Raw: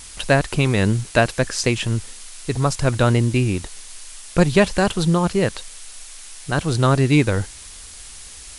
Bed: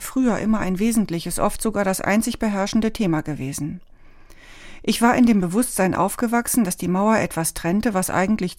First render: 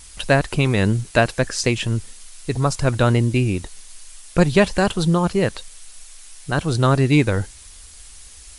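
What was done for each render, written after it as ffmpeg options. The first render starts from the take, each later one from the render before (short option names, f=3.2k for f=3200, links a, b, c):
-af "afftdn=nr=6:nf=-39"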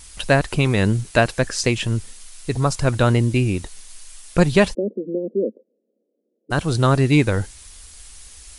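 -filter_complex "[0:a]asplit=3[a][b][c];[a]afade=t=out:st=4.73:d=0.02[d];[b]asuperpass=centerf=340:order=12:qfactor=1,afade=t=in:st=4.73:d=0.02,afade=t=out:st=6.5:d=0.02[e];[c]afade=t=in:st=6.5:d=0.02[f];[d][e][f]amix=inputs=3:normalize=0"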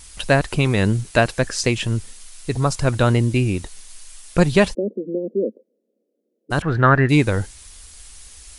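-filter_complex "[0:a]asettb=1/sr,asplit=3[a][b][c];[a]atrim=end=6.624[d];[b]atrim=start=6.62:end=7.09,asetpts=PTS-STARTPTS,afade=t=in:d=0.004:c=qsin,afade=t=out:st=0.466:d=0.004:c=qsin,lowpass=f=1.7k:t=q:w=7.1[e];[c]atrim=start=7.086[f];[d][e]acrossfade=d=0.004:c1=hsin:c2=qsin[g];[g][f]acrossfade=d=0.004:c1=qsin:c2=hsin"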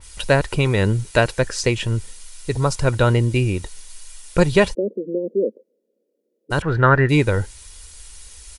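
-af "aecho=1:1:2.1:0.34,adynamicequalizer=threshold=0.02:dfrequency=3200:dqfactor=0.7:tfrequency=3200:tqfactor=0.7:attack=5:release=100:ratio=0.375:range=2:mode=cutabove:tftype=highshelf"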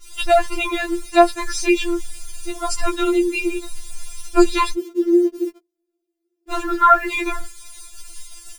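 -filter_complex "[0:a]asplit=2[a][b];[b]acrusher=bits=5:mix=0:aa=0.000001,volume=-5dB[c];[a][c]amix=inputs=2:normalize=0,afftfilt=real='re*4*eq(mod(b,16),0)':imag='im*4*eq(mod(b,16),0)':win_size=2048:overlap=0.75"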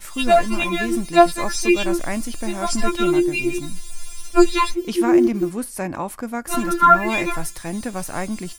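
-filter_complex "[1:a]volume=-7.5dB[a];[0:a][a]amix=inputs=2:normalize=0"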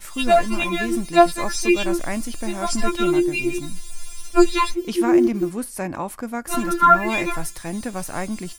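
-af "volume=-1dB"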